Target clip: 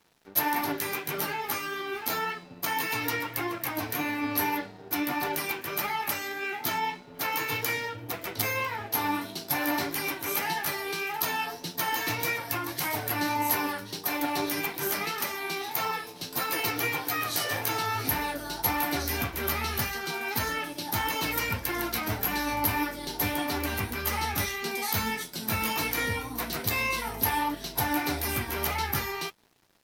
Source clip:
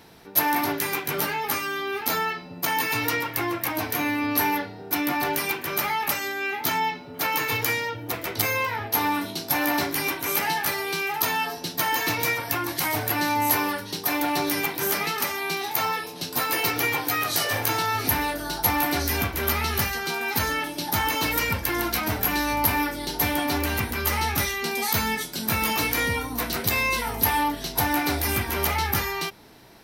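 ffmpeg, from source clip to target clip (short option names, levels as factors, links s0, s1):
-af "flanger=delay=4.2:depth=6.4:regen=62:speed=1.7:shape=triangular,aeval=exprs='sgn(val(0))*max(abs(val(0))-0.00237,0)':c=same"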